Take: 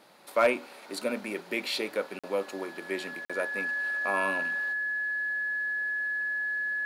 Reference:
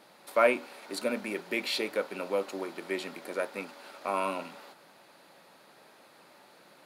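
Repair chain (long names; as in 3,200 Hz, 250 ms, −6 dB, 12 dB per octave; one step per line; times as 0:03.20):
clipped peaks rebuilt −15 dBFS
notch filter 1,700 Hz, Q 30
repair the gap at 0:02.19/0:03.25, 46 ms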